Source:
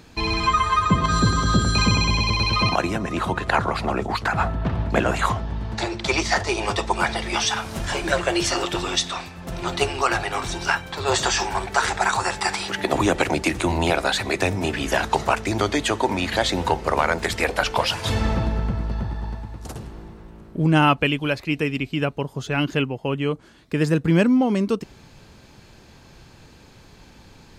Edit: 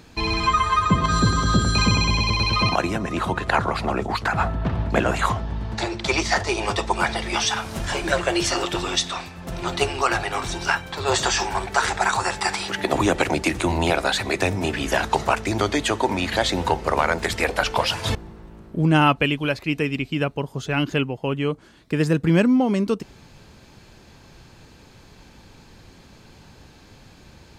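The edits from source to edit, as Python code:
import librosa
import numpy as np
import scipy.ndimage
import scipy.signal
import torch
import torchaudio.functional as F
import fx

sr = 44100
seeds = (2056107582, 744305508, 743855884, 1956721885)

y = fx.edit(x, sr, fx.cut(start_s=18.15, length_s=1.81), tone=tone)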